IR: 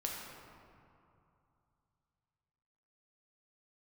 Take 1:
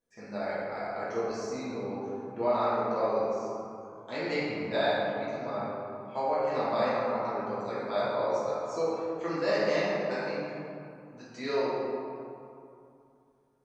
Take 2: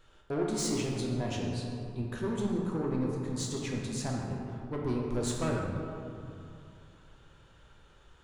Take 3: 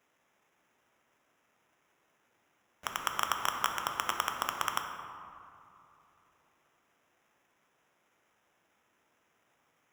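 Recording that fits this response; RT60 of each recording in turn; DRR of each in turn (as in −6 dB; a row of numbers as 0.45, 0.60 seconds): 2; 2.6, 2.6, 2.7 seconds; −10.0, −2.5, 4.0 decibels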